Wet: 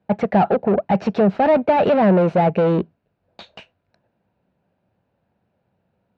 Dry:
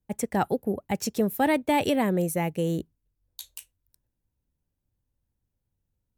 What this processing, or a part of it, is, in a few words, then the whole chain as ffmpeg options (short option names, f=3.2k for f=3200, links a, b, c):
overdrive pedal into a guitar cabinet: -filter_complex "[0:a]asplit=2[a][b];[b]highpass=f=720:p=1,volume=29dB,asoftclip=type=tanh:threshold=-12.5dB[c];[a][c]amix=inputs=2:normalize=0,lowpass=f=1.5k:p=1,volume=-6dB,highpass=85,equalizer=f=190:t=q:w=4:g=7,equalizer=f=290:t=q:w=4:g=-5,equalizer=f=660:t=q:w=4:g=7,equalizer=f=1.1k:t=q:w=4:g=-5,equalizer=f=2k:t=q:w=4:g=-6,equalizer=f=3.3k:t=q:w=4:g=-8,lowpass=f=3.5k:w=0.5412,lowpass=f=3.5k:w=1.3066,volume=3dB"